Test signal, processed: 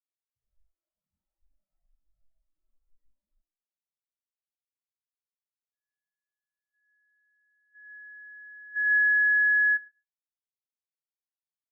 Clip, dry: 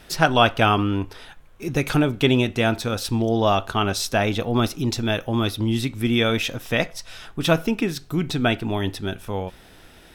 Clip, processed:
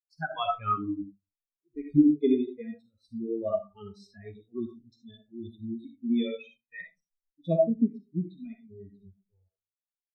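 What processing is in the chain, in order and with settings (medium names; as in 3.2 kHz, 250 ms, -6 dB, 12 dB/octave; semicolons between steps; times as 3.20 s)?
spectral noise reduction 16 dB; algorithmic reverb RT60 0.54 s, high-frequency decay 0.55×, pre-delay 20 ms, DRR 1.5 dB; spectral contrast expander 2.5:1; trim -3.5 dB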